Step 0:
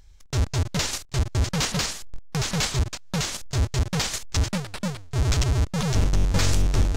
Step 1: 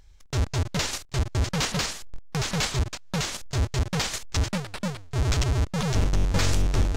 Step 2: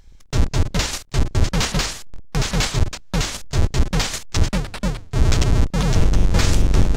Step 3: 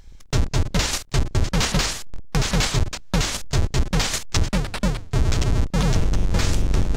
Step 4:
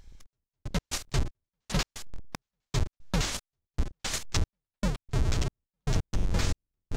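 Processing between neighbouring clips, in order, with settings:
tone controls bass -2 dB, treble -3 dB
octaver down 2 oct, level +3 dB; gain +4.5 dB
compressor 4:1, threshold -18 dBFS, peak gain reduction 8.5 dB; gain +2.5 dB
step gate "xx...x.x" 115 bpm -60 dB; gain -7 dB

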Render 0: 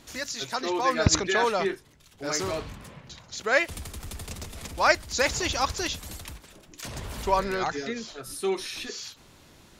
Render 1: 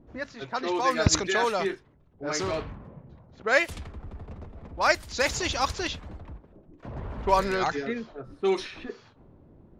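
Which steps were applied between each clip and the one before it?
low-pass opened by the level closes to 440 Hz, open at -21.5 dBFS; vocal rider within 3 dB 2 s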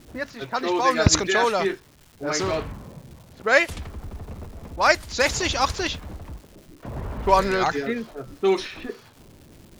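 crackle 530/s -46 dBFS; gain +4.5 dB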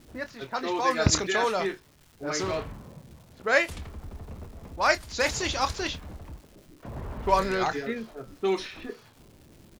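doubler 27 ms -11.5 dB; gain -5 dB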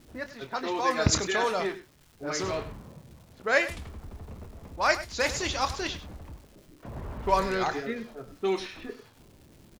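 echo 0.1 s -14 dB; gain -1.5 dB

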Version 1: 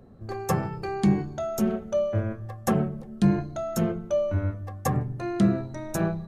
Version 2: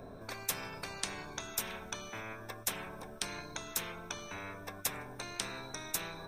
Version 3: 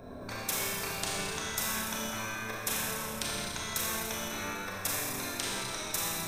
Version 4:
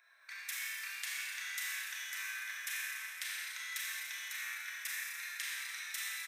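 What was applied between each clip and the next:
ripple EQ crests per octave 1.6, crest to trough 11 dB; spectral compressor 10:1; gain -4.5 dB
Schroeder reverb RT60 2.4 s, combs from 28 ms, DRR -5.5 dB
ladder high-pass 1700 Hz, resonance 65%; echo 0.55 s -4.5 dB; gain +1 dB

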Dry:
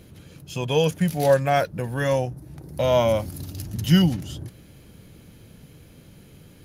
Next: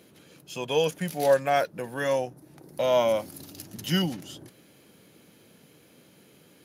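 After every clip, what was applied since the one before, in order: HPF 260 Hz 12 dB/oct; gain -2.5 dB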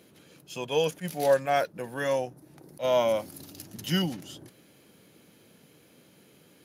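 attack slew limiter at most 330 dB/s; gain -1.5 dB

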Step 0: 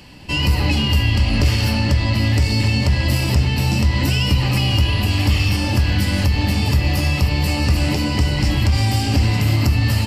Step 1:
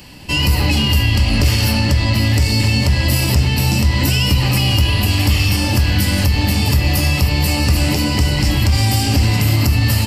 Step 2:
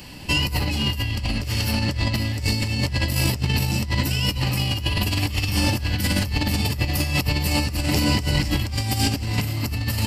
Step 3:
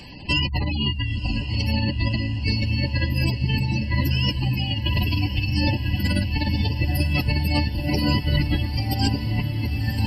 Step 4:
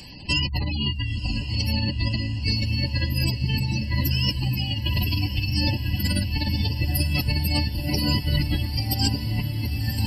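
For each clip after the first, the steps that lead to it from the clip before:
high shelf 7800 Hz +11 dB; in parallel at -2 dB: limiter -9 dBFS, peak gain reduction 7 dB; on the sum: gain -2.5 dB
negative-ratio compressor -17 dBFS, ratio -0.5; gain -4.5 dB
spectral gate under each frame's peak -20 dB strong; diffused feedback echo 1.039 s, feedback 66%, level -10.5 dB
tone controls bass +3 dB, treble +12 dB; gain -4.5 dB

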